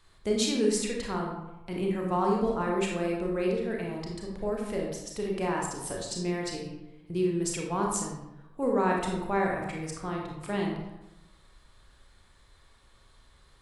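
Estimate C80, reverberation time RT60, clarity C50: 5.0 dB, 0.95 s, 2.0 dB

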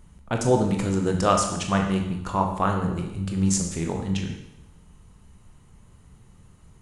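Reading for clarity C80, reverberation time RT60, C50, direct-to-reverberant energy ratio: 8.5 dB, 0.85 s, 5.5 dB, 2.0 dB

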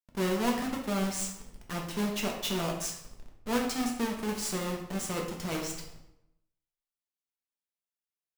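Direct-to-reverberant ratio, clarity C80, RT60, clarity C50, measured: 0.0 dB, 8.0 dB, 0.80 s, 5.5 dB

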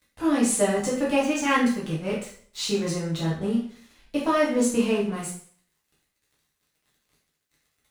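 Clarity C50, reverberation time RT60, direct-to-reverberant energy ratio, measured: 5.0 dB, 0.50 s, -7.0 dB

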